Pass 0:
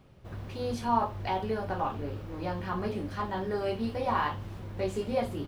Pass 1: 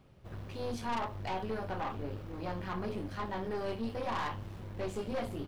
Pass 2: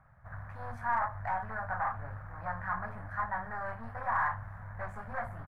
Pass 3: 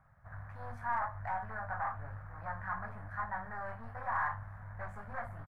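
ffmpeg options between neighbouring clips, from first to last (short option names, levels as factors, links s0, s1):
-af "aeval=exprs='(tanh(31.6*val(0)+0.55)-tanh(0.55))/31.6':c=same,volume=0.891"
-af "firequalizer=gain_entry='entry(120,0);entry(350,-25);entry(660,3);entry(1700,11);entry(2800,-22);entry(4700,-22);entry(7000,-17);entry(9900,-13)':delay=0.05:min_phase=1"
-filter_complex "[0:a]asplit=2[s0][s1];[s1]adelay=20,volume=0.251[s2];[s0][s2]amix=inputs=2:normalize=0,volume=0.631"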